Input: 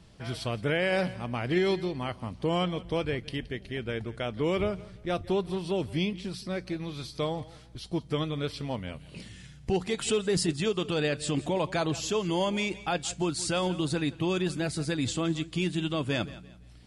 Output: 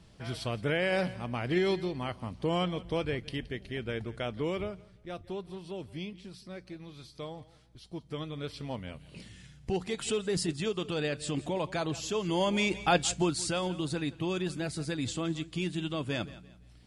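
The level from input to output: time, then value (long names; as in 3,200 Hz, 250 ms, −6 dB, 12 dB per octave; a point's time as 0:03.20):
0:04.30 −2 dB
0:04.85 −10.5 dB
0:07.87 −10.5 dB
0:08.70 −4 dB
0:12.09 −4 dB
0:12.95 +5 dB
0:13.62 −4 dB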